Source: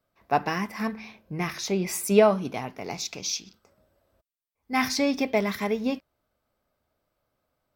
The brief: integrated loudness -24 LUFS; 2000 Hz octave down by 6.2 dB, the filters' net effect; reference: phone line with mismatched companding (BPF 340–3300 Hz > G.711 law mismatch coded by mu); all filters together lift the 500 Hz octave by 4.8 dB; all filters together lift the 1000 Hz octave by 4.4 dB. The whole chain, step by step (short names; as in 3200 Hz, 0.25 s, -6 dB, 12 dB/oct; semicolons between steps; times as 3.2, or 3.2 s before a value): BPF 340–3300 Hz; bell 500 Hz +6.5 dB; bell 1000 Hz +5 dB; bell 2000 Hz -8.5 dB; G.711 law mismatch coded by mu